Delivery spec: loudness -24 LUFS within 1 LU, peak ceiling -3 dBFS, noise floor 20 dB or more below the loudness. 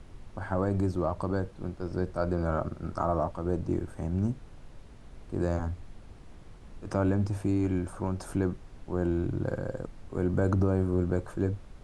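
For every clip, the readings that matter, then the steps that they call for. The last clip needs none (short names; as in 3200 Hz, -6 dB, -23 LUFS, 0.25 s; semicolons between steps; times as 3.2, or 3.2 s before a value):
noise floor -50 dBFS; noise floor target -51 dBFS; loudness -31.0 LUFS; peak -13.5 dBFS; loudness target -24.0 LUFS
-> noise print and reduce 6 dB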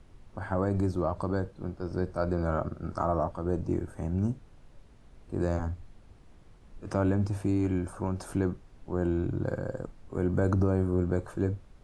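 noise floor -55 dBFS; loudness -31.0 LUFS; peak -13.5 dBFS; loudness target -24.0 LUFS
-> gain +7 dB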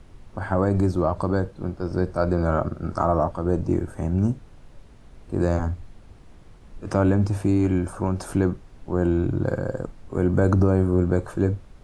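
loudness -24.0 LUFS; peak -6.5 dBFS; noise floor -48 dBFS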